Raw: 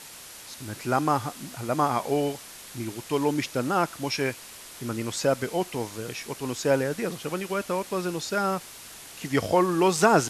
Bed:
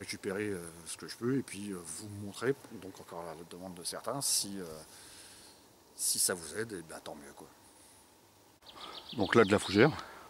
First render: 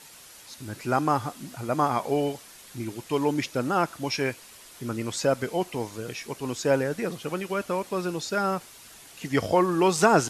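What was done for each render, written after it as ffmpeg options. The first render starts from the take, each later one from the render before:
ffmpeg -i in.wav -af "afftdn=noise_reduction=6:noise_floor=-45" out.wav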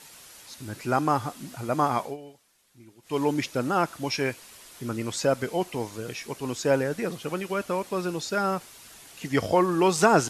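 ffmpeg -i in.wav -filter_complex "[0:a]asplit=3[link_01][link_02][link_03];[link_01]atrim=end=2.17,asetpts=PTS-STARTPTS,afade=type=out:start_time=2:duration=0.17:silence=0.125893[link_04];[link_02]atrim=start=2.17:end=3.02,asetpts=PTS-STARTPTS,volume=-18dB[link_05];[link_03]atrim=start=3.02,asetpts=PTS-STARTPTS,afade=type=in:duration=0.17:silence=0.125893[link_06];[link_04][link_05][link_06]concat=n=3:v=0:a=1" out.wav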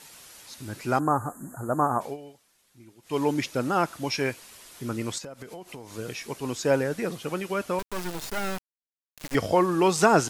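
ffmpeg -i in.wav -filter_complex "[0:a]asplit=3[link_01][link_02][link_03];[link_01]afade=type=out:start_time=0.98:duration=0.02[link_04];[link_02]asuperstop=centerf=3500:order=20:qfactor=0.7,afade=type=in:start_time=0.98:duration=0.02,afade=type=out:start_time=2:duration=0.02[link_05];[link_03]afade=type=in:start_time=2:duration=0.02[link_06];[link_04][link_05][link_06]amix=inputs=3:normalize=0,asettb=1/sr,asplit=3[link_07][link_08][link_09];[link_07]atrim=end=5.184[link_10];[link_08]atrim=start=5.18:end=5.95,asetpts=PTS-STARTPTS,afade=type=in:duration=0.004:curve=qsin,afade=type=out:start_time=0.766:duration=0.004:curve=qsin,acompressor=threshold=-36dB:ratio=16:attack=3.2:release=140:knee=1:detection=peak[link_11];[link_09]atrim=start=5.946[link_12];[link_10][link_11]acrossfade=duration=0.004:curve1=hsin:curve2=qsin[link_13];[link_13][link_12]acrossfade=duration=0.004:curve1=qsin:curve2=hsin,asettb=1/sr,asplit=3[link_14][link_15][link_16];[link_14]atrim=end=7.794[link_17];[link_15]atrim=start=7.79:end=9.35,asetpts=PTS-STARTPTS,afade=type=in:duration=0.004:curve=qsin,afade=type=out:start_time=1.556:duration=0.004:curve=qsin,acrusher=bits=3:dc=4:mix=0:aa=0.000001[link_18];[link_16]atrim=start=9.346[link_19];[link_17][link_18]acrossfade=duration=0.004:curve1=hsin:curve2=qsin[link_20];[link_20][link_19]acrossfade=duration=0.004:curve1=qsin:curve2=hsin" out.wav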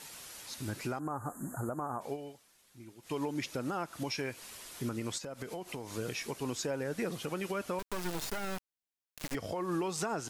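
ffmpeg -i in.wav -af "acompressor=threshold=-28dB:ratio=6,alimiter=level_in=1.5dB:limit=-24dB:level=0:latency=1:release=195,volume=-1.5dB" out.wav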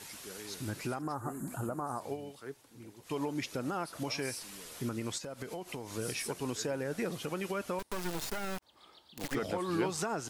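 ffmpeg -i in.wav -i bed.wav -filter_complex "[1:a]volume=-12.5dB[link_01];[0:a][link_01]amix=inputs=2:normalize=0" out.wav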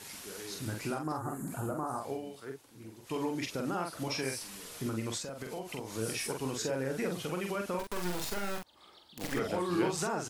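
ffmpeg -i in.wav -filter_complex "[0:a]asplit=2[link_01][link_02];[link_02]adelay=45,volume=-4dB[link_03];[link_01][link_03]amix=inputs=2:normalize=0" out.wav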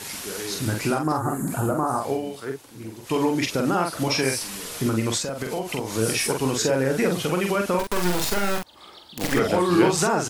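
ffmpeg -i in.wav -af "volume=12dB" out.wav

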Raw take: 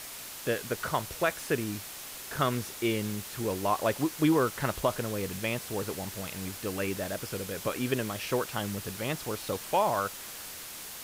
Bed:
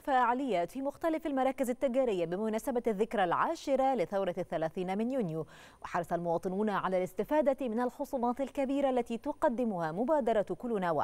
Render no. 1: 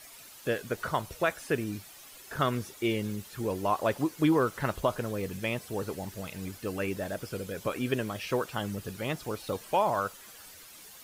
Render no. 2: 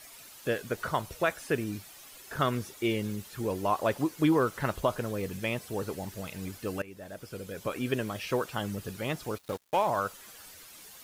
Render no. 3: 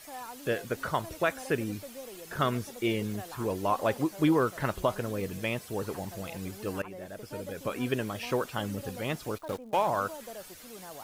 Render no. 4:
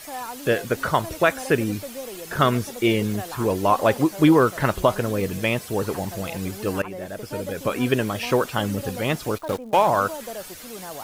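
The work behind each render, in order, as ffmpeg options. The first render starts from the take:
ffmpeg -i in.wav -af "afftdn=noise_reduction=11:noise_floor=-43" out.wav
ffmpeg -i in.wav -filter_complex "[0:a]asplit=3[link_01][link_02][link_03];[link_01]afade=type=out:start_time=9.37:duration=0.02[link_04];[link_02]aeval=exprs='sgn(val(0))*max(abs(val(0))-0.00891,0)':channel_layout=same,afade=type=in:start_time=9.37:duration=0.02,afade=type=out:start_time=9.87:duration=0.02[link_05];[link_03]afade=type=in:start_time=9.87:duration=0.02[link_06];[link_04][link_05][link_06]amix=inputs=3:normalize=0,asplit=2[link_07][link_08];[link_07]atrim=end=6.82,asetpts=PTS-STARTPTS,afade=type=out:start_time=6.816:duration=0.004:curve=hsin:silence=0.11885[link_09];[link_08]atrim=start=6.82,asetpts=PTS-STARTPTS,afade=type=in:duration=1.44:curve=qsin:silence=0.11885[link_10];[link_09][link_10]concat=n=2:v=0:a=1" out.wav
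ffmpeg -i in.wav -i bed.wav -filter_complex "[1:a]volume=-15dB[link_01];[0:a][link_01]amix=inputs=2:normalize=0" out.wav
ffmpeg -i in.wav -af "volume=9dB" out.wav

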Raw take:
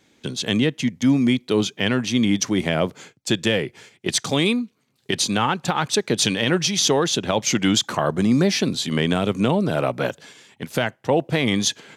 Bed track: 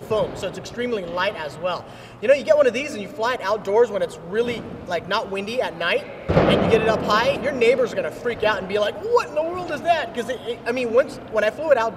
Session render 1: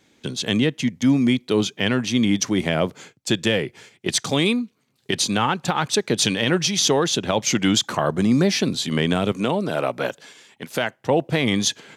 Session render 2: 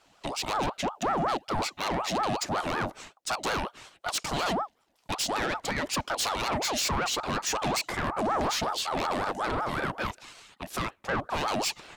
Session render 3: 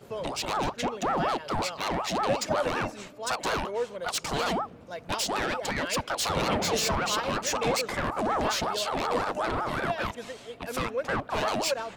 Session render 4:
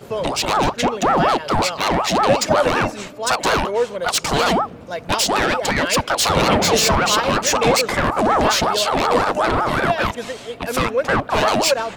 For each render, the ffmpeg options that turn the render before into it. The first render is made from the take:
ffmpeg -i in.wav -filter_complex "[0:a]asettb=1/sr,asplit=3[link_01][link_02][link_03];[link_01]atrim=end=9.324[link_04];[link_02]atrim=start=9.32:end=10.97,asetpts=PTS-STARTPTS,afade=type=in:duration=0.004:curve=qsin,afade=type=out:start_time=1.646:duration=0.004:curve=qsin,highpass=frequency=270:poles=1[link_05];[link_03]atrim=start=10.966[link_06];[link_04][link_05]acrossfade=duration=0.004:curve1=hsin:curve2=qsin[link_07];[link_07][link_06]acrossfade=duration=0.004:curve1=qsin:curve2=hsin" out.wav
ffmpeg -i in.wav -af "asoftclip=type=tanh:threshold=-22dB,aeval=exprs='val(0)*sin(2*PI*750*n/s+750*0.45/5.4*sin(2*PI*5.4*n/s))':channel_layout=same" out.wav
ffmpeg -i in.wav -i bed.wav -filter_complex "[1:a]volume=-14dB[link_01];[0:a][link_01]amix=inputs=2:normalize=0" out.wav
ffmpeg -i in.wav -af "volume=11dB" out.wav

